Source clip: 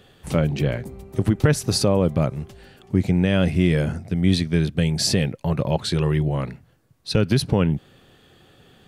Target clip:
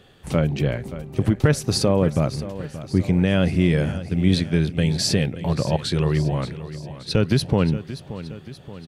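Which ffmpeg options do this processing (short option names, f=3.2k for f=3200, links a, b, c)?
-filter_complex "[0:a]highshelf=f=11k:g=-6,asplit=2[a][b];[b]aecho=0:1:577|1154|1731|2308|2885:0.2|0.108|0.0582|0.0314|0.017[c];[a][c]amix=inputs=2:normalize=0"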